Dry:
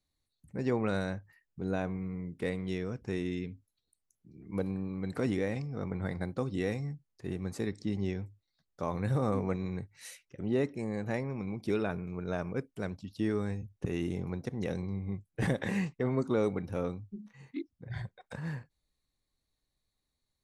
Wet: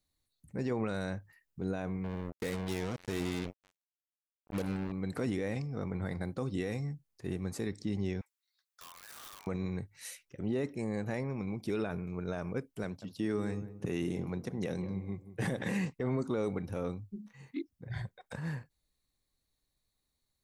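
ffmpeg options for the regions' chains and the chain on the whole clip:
ffmpeg -i in.wav -filter_complex "[0:a]asettb=1/sr,asplit=3[link_01][link_02][link_03];[link_01]atrim=end=2.044[link_04];[link_02]atrim=start=2.04:end=4.92,asetpts=PTS-STARTPTS,afade=type=in:duration=0.004:curve=qsin,afade=type=out:start_time=2.876:duration=0.004:curve=qsin,highshelf=frequency=5300:gain=3,aecho=1:1:549:0.141,atrim=end_sample=127008,acrusher=bits=5:mix=0:aa=0.5[link_05];[link_03]atrim=start=4.916[link_06];[link_04][link_05]acrossfade=duration=0.004:curve1=hsin:curve2=qsin[link_07];[link_07][link_06]acrossfade=duration=0.004:curve1=qsin:curve2=hsin,asettb=1/sr,asplit=3[link_08][link_09][link_10];[link_08]atrim=end=8.214[link_11];[link_09]atrim=start=8.21:end=9.47,asetpts=PTS-STARTPTS,afade=type=in:duration=0.004:curve=qsin,afade=type=out:start_time=1.256:duration=0.004:curve=qsin,highpass=frequency=1100:width=0.5412,highpass=frequency=1100:width=1.3066,acompressor=threshold=-45dB:ratio=16:attack=3.2:release=140:knee=1:detection=peak,aeval=exprs='(mod(200*val(0)+1,2)-1)/200':channel_layout=same[link_12];[link_10]atrim=start=9.466[link_13];[link_11][link_12]acrossfade=duration=0.004:curve1=hsin:curve2=qsin[link_14];[link_14][link_13]acrossfade=duration=0.004:curve1=qsin:curve2=hsin,asettb=1/sr,asplit=3[link_15][link_16][link_17];[link_15]atrim=end=12.844[link_18];[link_16]atrim=start=12.84:end=15.9,asetpts=PTS-STARTPTS,afade=type=in:duration=0.004:curve=qsin,afade=type=out:start_time=3.056:duration=0.004:curve=qsin,highpass=110,asplit=2[link_19][link_20];[link_20]adelay=179,lowpass=frequency=910:poles=1,volume=-12dB,asplit=2[link_21][link_22];[link_22]adelay=179,lowpass=frequency=910:poles=1,volume=0.32,asplit=2[link_23][link_24];[link_24]adelay=179,lowpass=frequency=910:poles=1,volume=0.32[link_25];[link_19][link_21][link_23][link_25]amix=inputs=4:normalize=0,atrim=end_sample=134946[link_26];[link_17]atrim=start=15.896[link_27];[link_18][link_26]acrossfade=duration=0.004:curve1=hsin:curve2=qsin[link_28];[link_28][link_27]acrossfade=duration=0.004:curve1=qsin:curve2=hsin,highshelf=frequency=8600:gain=6.5,alimiter=limit=-24dB:level=0:latency=1:release=32" out.wav

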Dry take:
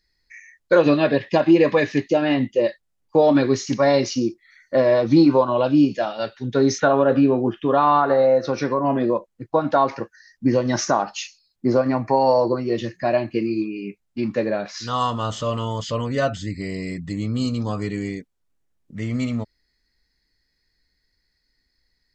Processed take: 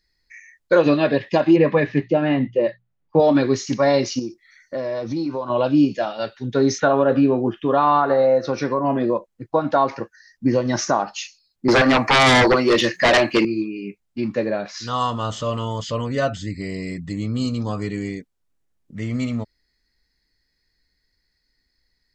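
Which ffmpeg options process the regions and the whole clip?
ffmpeg -i in.wav -filter_complex "[0:a]asettb=1/sr,asplit=3[link_01][link_02][link_03];[link_01]atrim=end=1.564[link_04];[link_02]atrim=start=1.56:end=3.2,asetpts=PTS-STARTPTS,afade=type=in:duration=0.004:curve=qsin,afade=type=out:start_time=1.636:duration=0.004:curve=qsin,lowpass=2600,equalizer=frequency=160:width=4.2:gain=8,bandreject=frequency=60:width_type=h:width=6,bandreject=frequency=120:width_type=h:width=6,bandreject=frequency=180:width_type=h:width=6[link_05];[link_03]atrim=start=3.196[link_06];[link_04][link_05]acrossfade=duration=0.004:curve1=hsin:curve2=qsin[link_07];[link_07][link_06]acrossfade=duration=0.004:curve1=qsin:curve2=hsin,asettb=1/sr,asplit=3[link_08][link_09][link_10];[link_08]atrim=end=4.194[link_11];[link_09]atrim=start=4.19:end=5.5,asetpts=PTS-STARTPTS,afade=type=in:duration=0.004:curve=qsin,afade=type=out:start_time=1.306:duration=0.004:curve=qsin,equalizer=frequency=5600:width_type=o:width=0.36:gain=8,acompressor=threshold=-27dB:ratio=2.5:attack=3.2:release=140:knee=1:detection=peak[link_12];[link_10]atrim=start=5.496[link_13];[link_11][link_12]acrossfade=duration=0.004:curve1=hsin:curve2=qsin[link_14];[link_14][link_13]acrossfade=duration=0.004:curve1=qsin:curve2=hsin,asettb=1/sr,asplit=3[link_15][link_16][link_17];[link_15]atrim=end=11.684[link_18];[link_16]atrim=start=11.68:end=13.45,asetpts=PTS-STARTPTS,afade=type=in:duration=0.004:curve=qsin,afade=type=out:start_time=1.766:duration=0.004:curve=qsin,highpass=frequency=910:poles=1,highshelf=frequency=6200:gain=-3.5,aeval=exprs='0.299*sin(PI/2*5.01*val(0)/0.299)':channel_layout=same[link_19];[link_17]atrim=start=13.446[link_20];[link_18][link_19]acrossfade=duration=0.004:curve1=hsin:curve2=qsin[link_21];[link_21][link_20]acrossfade=duration=0.004:curve1=qsin:curve2=hsin" out.wav

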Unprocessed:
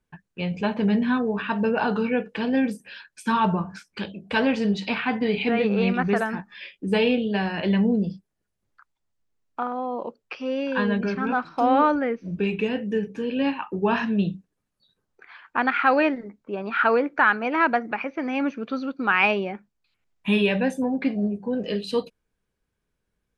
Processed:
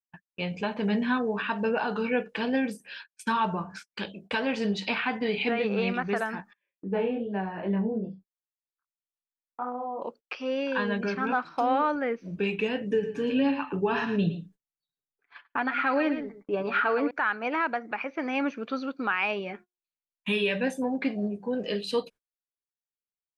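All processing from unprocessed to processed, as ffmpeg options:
ffmpeg -i in.wav -filter_complex "[0:a]asettb=1/sr,asplit=3[link_01][link_02][link_03];[link_01]atrim=end=6.534[link_04];[link_02]atrim=start=6.53:end=10.02,asetpts=PTS-STARTPTS,afade=type=in:duration=0.004:curve=qsin,afade=type=out:start_time=3.486:duration=0.004:curve=qsin,lowpass=1200,flanger=delay=20:depth=3:speed=2.5[link_05];[link_03]atrim=start=10.016[link_06];[link_04][link_05]acrossfade=duration=0.004:curve1=hsin:curve2=qsin[link_07];[link_07][link_06]acrossfade=duration=0.004:curve1=qsin:curve2=hsin,asettb=1/sr,asplit=3[link_08][link_09][link_10];[link_08]atrim=end=12.814[link_11];[link_09]atrim=start=12.81:end=17.11,asetpts=PTS-STARTPTS,afade=type=in:duration=0.004:curve=qsin,afade=type=out:start_time=4.296:duration=0.004:curve=qsin,lowshelf=frequency=240:gain=10,aecho=1:1:7:0.55,atrim=end_sample=189630,aecho=1:1:112:0.266,atrim=end_sample=189630[link_12];[link_10]atrim=start=17.106[link_13];[link_11][link_12]acrossfade=duration=0.004:curve1=hsin:curve2=qsin[link_14];[link_14][link_13]acrossfade=duration=0.004:curve1=qsin:curve2=hsin,asettb=1/sr,asplit=3[link_15][link_16][link_17];[link_15]atrim=end=19.394[link_18];[link_16]atrim=start=19.39:end=20.67,asetpts=PTS-STARTPTS,afade=type=in:duration=0.004:curve=qsin,afade=type=out:start_time=1.276:duration=0.004:curve=qsin,equalizer=frequency=800:width=2.1:gain=-7.5,asplit=2[link_19][link_20];[link_20]adelay=12,volume=-10dB[link_21];[link_19][link_21]amix=inputs=2:normalize=0,atrim=end_sample=56448,bandreject=frequency=359.1:width_type=h:width=4,bandreject=frequency=718.2:width_type=h:width=4,bandreject=frequency=1077.3:width_type=h:width=4,bandreject=frequency=1436.4:width_type=h:width=4[link_22];[link_17]atrim=start=20.666[link_23];[link_18][link_22]acrossfade=duration=0.004:curve1=hsin:curve2=qsin[link_24];[link_24][link_23]acrossfade=duration=0.004:curve1=qsin:curve2=hsin,agate=range=-29dB:threshold=-43dB:ratio=16:detection=peak,lowshelf=frequency=260:gain=-9,alimiter=limit=-16.5dB:level=0:latency=1:release=278" out.wav

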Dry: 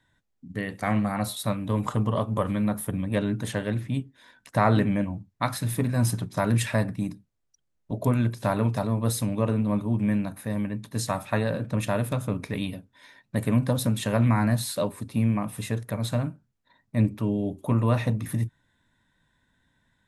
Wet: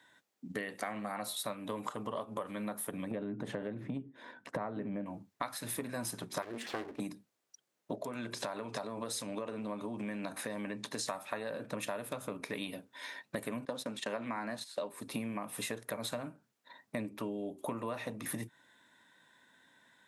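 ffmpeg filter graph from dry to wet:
ffmpeg -i in.wav -filter_complex "[0:a]asettb=1/sr,asplit=3[link_01][link_02][link_03];[link_01]atrim=end=3.114[link_04];[link_02]atrim=start=3.11:end=5.06,asetpts=PTS-STARTPTS,afade=type=in:duration=0.004:curve=qsin,afade=type=out:start_time=1.946:duration=0.004:curve=qsin,lowpass=frequency=1100:poles=1,lowshelf=frequency=400:gain=9.5,acompressor=threshold=-22dB:ratio=3:attack=3.2:release=140:knee=1:detection=peak[link_05];[link_03]atrim=start=5.056[link_06];[link_04][link_05]acrossfade=duration=0.004:curve1=hsin:curve2=qsin[link_07];[link_07][link_06]acrossfade=duration=0.004:curve1=qsin:curve2=hsin,asettb=1/sr,asplit=3[link_08][link_09][link_10];[link_08]atrim=end=6.424[link_11];[link_09]atrim=start=6.42:end=7,asetpts=PTS-STARTPTS,afade=type=in:duration=0.004:curve=qsin,afade=type=out:start_time=0.576:duration=0.004:curve=qsin,lowpass=frequency=1200:poles=1,aeval=exprs='abs(val(0))':channel_layout=same,equalizer=frequency=720:width=0.42:gain=-5[link_12];[link_10]atrim=start=6.996[link_13];[link_11][link_12]acrossfade=duration=0.004:curve1=hsin:curve2=qsin[link_14];[link_14][link_13]acrossfade=duration=0.004:curve1=qsin:curve2=hsin,asettb=1/sr,asplit=3[link_15][link_16][link_17];[link_15]atrim=end=7.954[link_18];[link_16]atrim=start=7.95:end=11.08,asetpts=PTS-STARTPTS,afade=type=in:duration=0.004:curve=qsin,afade=type=out:start_time=3.126:duration=0.004:curve=qsin,lowpass=7100,bass=frequency=250:gain=-2,treble=frequency=4000:gain=4,acompressor=threshold=-32dB:ratio=4:attack=3.2:release=140:knee=1:detection=peak[link_19];[link_17]atrim=start=11.076[link_20];[link_18][link_19]acrossfade=duration=0.004:curve1=hsin:curve2=qsin[link_21];[link_21][link_20]acrossfade=duration=0.004:curve1=qsin:curve2=hsin,asettb=1/sr,asplit=3[link_22][link_23][link_24];[link_22]atrim=end=13.654[link_25];[link_23]atrim=start=13.65:end=14.9,asetpts=PTS-STARTPTS,afade=type=in:duration=0.004:curve=qsin,afade=type=out:start_time=1.246:duration=0.004:curve=qsin,highpass=160,lowpass=7100,agate=range=-16dB:threshold=-34dB:ratio=16:release=100:detection=peak[link_26];[link_24]atrim=start=14.896[link_27];[link_25][link_26]acrossfade=duration=0.004:curve1=hsin:curve2=qsin[link_28];[link_28][link_27]acrossfade=duration=0.004:curve1=qsin:curve2=hsin,highpass=340,acompressor=threshold=-42dB:ratio=12,volume=7dB" out.wav

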